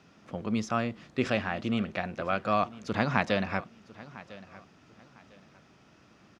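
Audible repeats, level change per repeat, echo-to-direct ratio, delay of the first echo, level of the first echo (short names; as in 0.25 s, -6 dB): 2, -11.0 dB, -18.5 dB, 1.002 s, -19.0 dB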